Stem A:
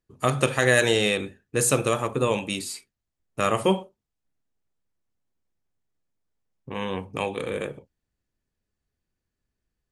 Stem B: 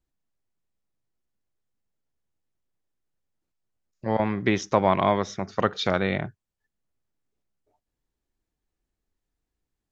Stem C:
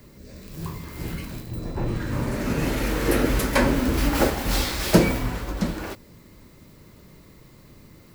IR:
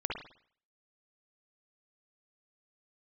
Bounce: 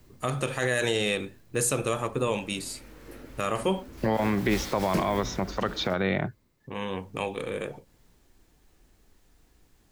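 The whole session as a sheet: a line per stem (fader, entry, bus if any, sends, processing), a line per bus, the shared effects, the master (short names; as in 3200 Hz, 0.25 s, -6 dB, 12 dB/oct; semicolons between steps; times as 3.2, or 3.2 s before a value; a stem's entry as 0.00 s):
-3.0 dB, 0.00 s, no send, dry
+0.5 dB, 0.00 s, no send, three-band squash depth 70%
-10.5 dB, 0.00 s, no send, auto duck -14 dB, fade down 0.70 s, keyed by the first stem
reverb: off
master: limiter -14.5 dBFS, peak gain reduction 8 dB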